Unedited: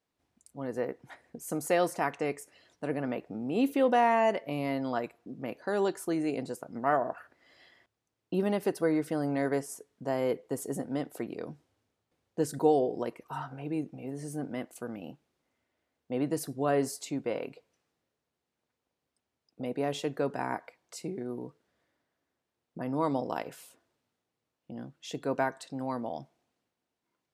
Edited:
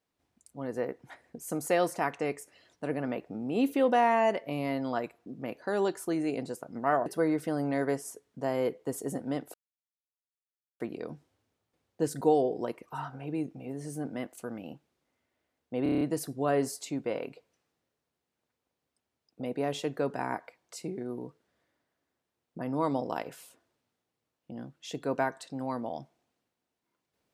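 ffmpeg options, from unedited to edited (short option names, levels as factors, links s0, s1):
-filter_complex "[0:a]asplit=9[s0][s1][s2][s3][s4][s5][s6][s7][s8];[s0]atrim=end=7.062[s9];[s1]atrim=start=8.698:end=11.18,asetpts=PTS-STARTPTS,afade=t=out:st=2.478:d=0.004:c=hsin,apad=pad_dur=1.26[s10];[s2]atrim=start=11.18:end=16.242,asetpts=PTS-STARTPTS,afade=t=in:d=0.004:c=hsin[s11];[s3]atrim=start=16.208:end=16.242[s12];[s4]atrim=start=16.208:end=16.242[s13];[s5]atrim=start=16.208:end=16.242[s14];[s6]atrim=start=16.208:end=16.242[s15];[s7]atrim=start=16.208:end=16.242[s16];[s8]atrim=start=16.208[s17];[s10][s11]concat=n=2:v=0:a=1[s18];[s9][s18]acrossfade=d=0.004:c1=hsin:c2=hsin[s19];[s19][s12]acrossfade=d=0.004:c1=hsin:c2=hsin[s20];[s20][s13]acrossfade=d=0.004:c1=hsin:c2=hsin[s21];[s21][s14]acrossfade=d=0.004:c1=hsin:c2=hsin[s22];[s22][s15]acrossfade=d=0.004:c1=hsin:c2=hsin[s23];[s23][s16]acrossfade=d=0.004:c1=hsin:c2=hsin[s24];[s24][s17]acrossfade=d=0.004:c1=hsin:c2=hsin"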